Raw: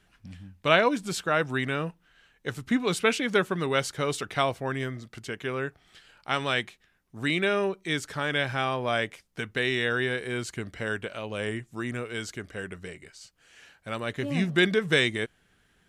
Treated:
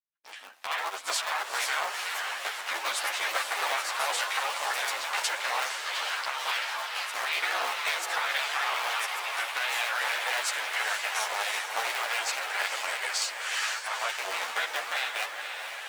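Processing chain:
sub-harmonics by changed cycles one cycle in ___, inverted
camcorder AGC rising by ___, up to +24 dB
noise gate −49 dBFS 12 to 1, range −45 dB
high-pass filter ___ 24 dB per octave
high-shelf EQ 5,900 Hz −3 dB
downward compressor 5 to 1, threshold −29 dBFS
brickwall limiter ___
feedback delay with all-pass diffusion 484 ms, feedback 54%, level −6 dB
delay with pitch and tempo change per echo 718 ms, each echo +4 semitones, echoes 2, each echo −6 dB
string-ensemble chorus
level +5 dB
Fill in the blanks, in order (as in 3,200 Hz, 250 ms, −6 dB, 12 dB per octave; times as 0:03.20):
3, 29 dB per second, 730 Hz, −18 dBFS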